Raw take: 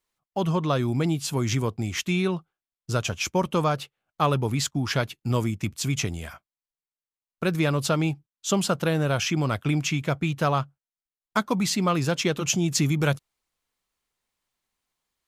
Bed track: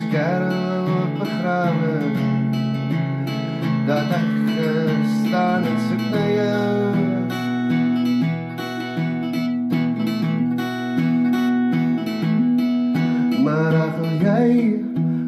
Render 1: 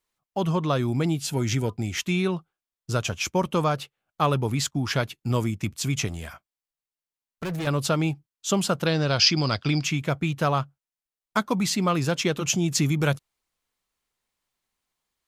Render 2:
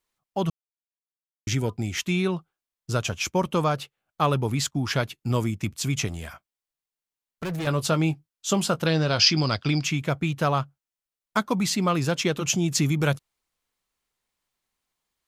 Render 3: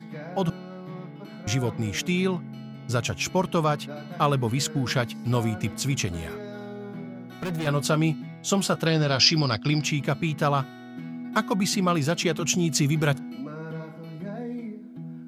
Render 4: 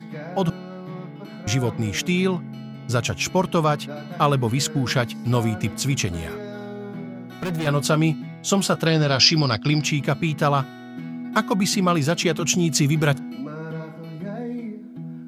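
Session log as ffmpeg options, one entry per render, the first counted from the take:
ffmpeg -i in.wav -filter_complex "[0:a]asettb=1/sr,asplit=3[link_01][link_02][link_03];[link_01]atrim=end=1.204[link_04];[link_02]atrim=start=1.2:end=2.06,asetpts=PTS-STARTPTS,afade=type=in:duration=0.004:curve=qsin,afade=type=out:start_time=0.856:duration=0.004:curve=qsin,asuperstop=centerf=1100:order=20:qfactor=5.7[link_05];[link_03]atrim=start=2.056[link_06];[link_04][link_05]acrossfade=duration=0.004:curve1=hsin:curve2=qsin[link_07];[link_07][link_06]acrossfade=duration=0.004:curve1=qsin:curve2=hsin,asettb=1/sr,asplit=3[link_08][link_09][link_10];[link_08]atrim=end=6.084[link_11];[link_09]atrim=start=6.08:end=7.67,asetpts=PTS-STARTPTS,afade=type=in:duration=0.004:curve=qsin,afade=type=out:start_time=1.586:duration=0.004:curve=qsin,asoftclip=type=hard:threshold=-27.5dB[link_12];[link_10]atrim=start=7.666[link_13];[link_11][link_12]acrossfade=duration=0.004:curve1=hsin:curve2=qsin[link_14];[link_14][link_13]acrossfade=duration=0.004:curve1=qsin:curve2=hsin,asettb=1/sr,asplit=3[link_15][link_16][link_17];[link_15]atrim=end=8.864[link_18];[link_16]atrim=start=8.86:end=9.84,asetpts=PTS-STARTPTS,afade=type=in:duration=0.004:curve=qsin,afade=type=out:start_time=0.976:duration=0.004:curve=qsin,lowpass=frequency=4800:width_type=q:width=14[link_19];[link_17]atrim=start=9.836[link_20];[link_18][link_19]acrossfade=duration=0.004:curve1=hsin:curve2=qsin[link_21];[link_21][link_20]acrossfade=duration=0.004:curve1=qsin:curve2=hsin" out.wav
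ffmpeg -i in.wav -filter_complex "[0:a]asettb=1/sr,asplit=3[link_01][link_02][link_03];[link_01]atrim=end=7.644[link_04];[link_02]atrim=start=7.64:end=9.44,asetpts=PTS-STARTPTS,afade=type=in:duration=0.004:curve=qsin,afade=type=out:start_time=1.796:duration=0.004:curve=qsin,asplit=2[link_05][link_06];[link_06]adelay=19,volume=-12.5dB[link_07];[link_05][link_07]amix=inputs=2:normalize=0,atrim=end_sample=79380[link_08];[link_03]atrim=start=9.436[link_09];[link_04][link_08]acrossfade=duration=0.004:curve1=hsin:curve2=qsin[link_10];[link_10][link_09]acrossfade=duration=0.004:curve1=qsin:curve2=hsin,asplit=3[link_11][link_12][link_13];[link_11]atrim=end=0.5,asetpts=PTS-STARTPTS,afade=type=out:start_time=0.496:duration=0.004:curve=hsin[link_14];[link_12]atrim=start=0.5:end=1.47,asetpts=PTS-STARTPTS,volume=0[link_15];[link_13]atrim=start=1.47,asetpts=PTS-STARTPTS,afade=type=in:duration=0.004:curve=hsin[link_16];[link_14][link_15][link_16]concat=n=3:v=0:a=1" out.wav
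ffmpeg -i in.wav -i bed.wav -filter_complex "[1:a]volume=-18dB[link_01];[0:a][link_01]amix=inputs=2:normalize=0" out.wav
ffmpeg -i in.wav -af "volume=3.5dB,alimiter=limit=-3dB:level=0:latency=1" out.wav

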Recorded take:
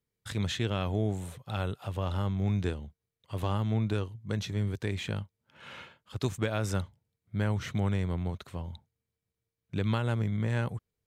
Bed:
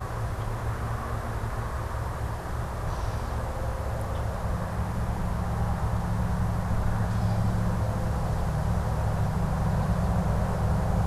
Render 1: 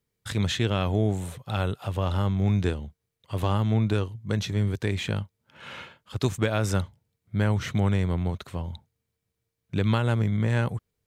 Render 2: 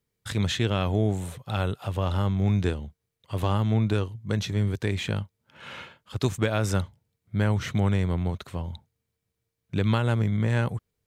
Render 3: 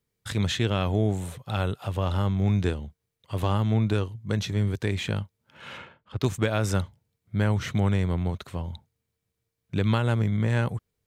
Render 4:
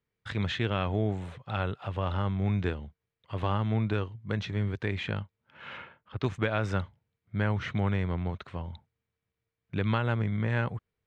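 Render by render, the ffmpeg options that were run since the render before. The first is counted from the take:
ffmpeg -i in.wav -af "volume=5.5dB" out.wav
ffmpeg -i in.wav -af anull out.wav
ffmpeg -i in.wav -filter_complex "[0:a]asplit=3[link_01][link_02][link_03];[link_01]afade=type=out:start_time=5.77:duration=0.02[link_04];[link_02]adynamicsmooth=sensitivity=4:basefreq=2400,afade=type=in:start_time=5.77:duration=0.02,afade=type=out:start_time=6.25:duration=0.02[link_05];[link_03]afade=type=in:start_time=6.25:duration=0.02[link_06];[link_04][link_05][link_06]amix=inputs=3:normalize=0" out.wav
ffmpeg -i in.wav -af "lowpass=2100,tiltshelf=frequency=1300:gain=-5" out.wav

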